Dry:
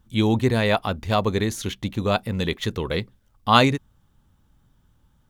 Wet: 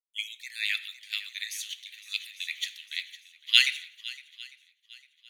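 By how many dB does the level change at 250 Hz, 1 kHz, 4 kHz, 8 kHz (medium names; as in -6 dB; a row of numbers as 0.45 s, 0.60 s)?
under -40 dB, under -30 dB, +2.0 dB, -1.0 dB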